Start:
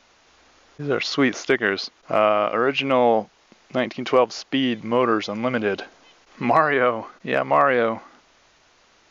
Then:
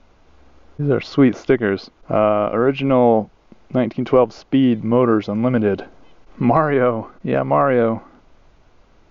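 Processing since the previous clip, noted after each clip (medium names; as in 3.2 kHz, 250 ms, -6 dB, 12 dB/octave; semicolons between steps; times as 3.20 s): tilt EQ -4 dB/octave; band-stop 1.8 kHz, Q 13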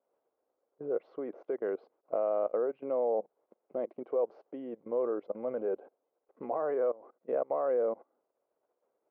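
level held to a coarse grid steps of 21 dB; ladder band-pass 570 Hz, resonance 50%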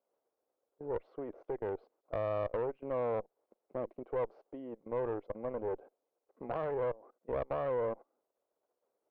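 valve stage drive 27 dB, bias 0.7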